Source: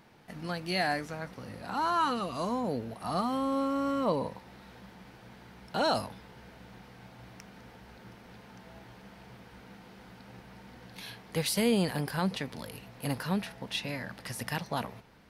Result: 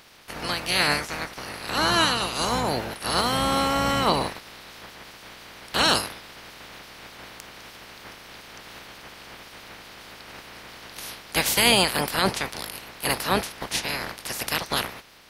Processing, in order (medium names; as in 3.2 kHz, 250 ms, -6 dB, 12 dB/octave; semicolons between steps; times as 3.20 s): spectral peaks clipped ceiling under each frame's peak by 23 dB; trim +7.5 dB